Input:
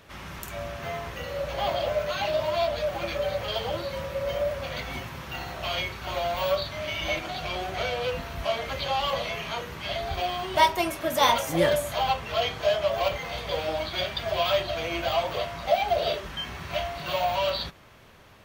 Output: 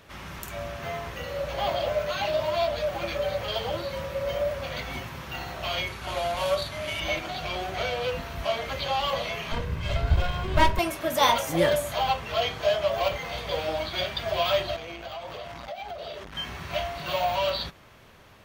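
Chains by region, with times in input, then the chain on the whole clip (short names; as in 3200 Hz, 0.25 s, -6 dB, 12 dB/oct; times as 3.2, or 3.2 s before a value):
5.87–7 CVSD 64 kbps + notch 8000 Hz, Q 16
9.52–10.79 minimum comb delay 1.9 ms + tone controls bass +15 dB, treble -7 dB
14.76–16.35 high shelf 12000 Hz -5.5 dB + compressor 10:1, threshold -32 dBFS + core saturation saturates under 600 Hz
whole clip: dry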